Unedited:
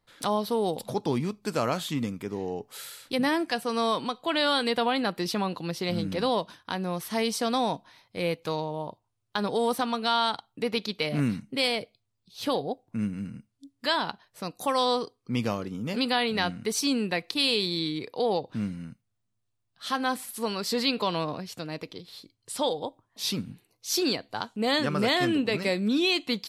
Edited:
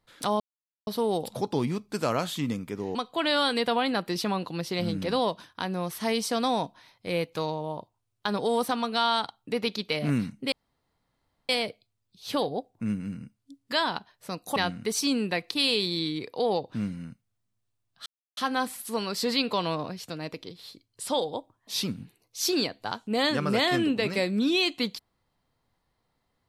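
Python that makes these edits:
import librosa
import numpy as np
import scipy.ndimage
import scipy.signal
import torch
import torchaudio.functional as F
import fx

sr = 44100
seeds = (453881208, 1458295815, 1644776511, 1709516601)

y = fx.edit(x, sr, fx.insert_silence(at_s=0.4, length_s=0.47),
    fx.cut(start_s=2.48, length_s=1.57),
    fx.insert_room_tone(at_s=11.62, length_s=0.97),
    fx.cut(start_s=14.69, length_s=1.67),
    fx.insert_silence(at_s=19.86, length_s=0.31), tone=tone)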